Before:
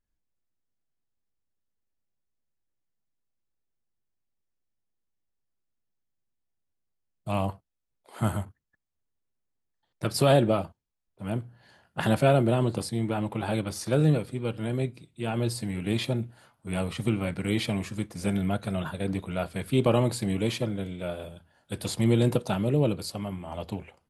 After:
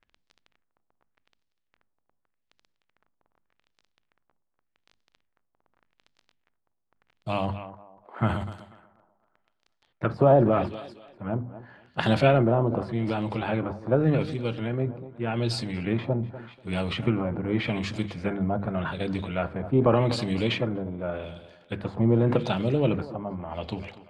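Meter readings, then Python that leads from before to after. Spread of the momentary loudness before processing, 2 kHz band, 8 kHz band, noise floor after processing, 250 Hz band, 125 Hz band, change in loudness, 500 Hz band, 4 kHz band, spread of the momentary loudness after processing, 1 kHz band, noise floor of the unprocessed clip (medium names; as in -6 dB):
13 LU, +2.5 dB, under -10 dB, -77 dBFS, +1.0 dB, +0.5 dB, +1.5 dB, +2.5 dB, 0.0 dB, 15 LU, +3.0 dB, -80 dBFS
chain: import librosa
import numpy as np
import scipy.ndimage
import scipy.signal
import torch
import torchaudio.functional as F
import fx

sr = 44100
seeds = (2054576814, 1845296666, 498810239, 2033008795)

p1 = fx.dmg_crackle(x, sr, seeds[0], per_s=11.0, level_db=-42.0)
p2 = fx.hum_notches(p1, sr, base_hz=50, count=5)
p3 = p2 + fx.echo_thinned(p2, sr, ms=245, feedback_pct=39, hz=210.0, wet_db=-17.5, dry=0)
p4 = fx.transient(p3, sr, attack_db=3, sustain_db=7)
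y = fx.filter_lfo_lowpass(p4, sr, shape='sine', hz=0.85, low_hz=910.0, high_hz=4700.0, q=1.4)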